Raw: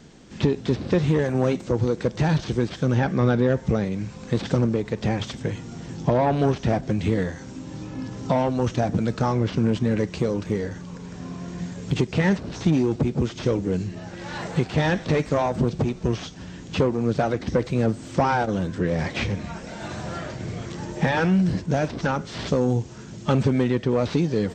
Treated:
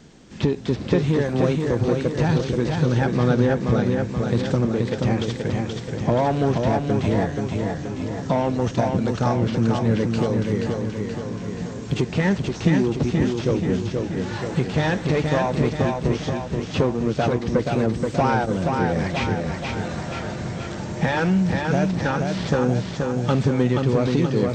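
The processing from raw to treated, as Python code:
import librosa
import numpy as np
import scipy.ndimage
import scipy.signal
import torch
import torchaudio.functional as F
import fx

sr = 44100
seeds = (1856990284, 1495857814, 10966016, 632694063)

y = fx.echo_feedback(x, sr, ms=478, feedback_pct=57, wet_db=-4.0)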